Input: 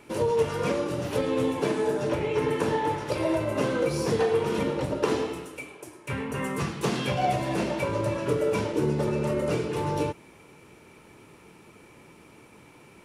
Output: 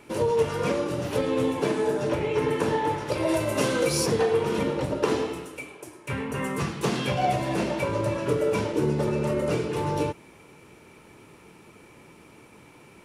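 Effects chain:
0:03.27–0:04.05: high-shelf EQ 4,300 Hz → 2,600 Hz +12 dB
level +1 dB

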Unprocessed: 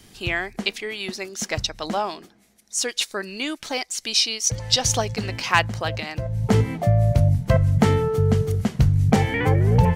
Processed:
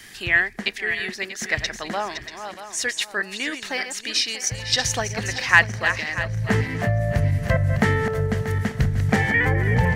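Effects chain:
feedback delay that plays each chunk backwards 318 ms, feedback 56%, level −9 dB
parametric band 1,800 Hz +14.5 dB 0.49 octaves
one half of a high-frequency compander encoder only
level −3.5 dB

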